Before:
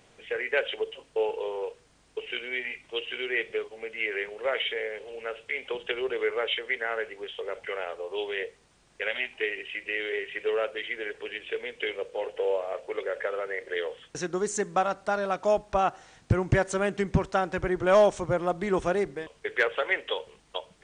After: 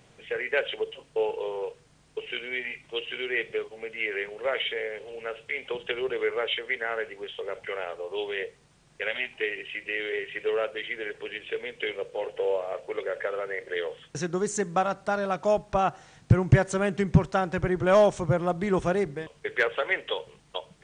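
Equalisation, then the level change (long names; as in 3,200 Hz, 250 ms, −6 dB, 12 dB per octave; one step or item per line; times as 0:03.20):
parametric band 140 Hz +9 dB 0.84 octaves
0.0 dB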